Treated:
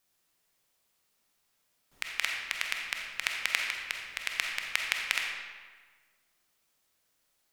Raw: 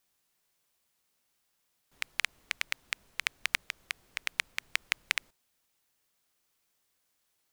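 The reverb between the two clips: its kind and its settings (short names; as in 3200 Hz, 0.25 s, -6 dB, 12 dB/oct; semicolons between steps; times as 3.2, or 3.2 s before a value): digital reverb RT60 1.5 s, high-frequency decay 0.75×, pre-delay 5 ms, DRR 0.5 dB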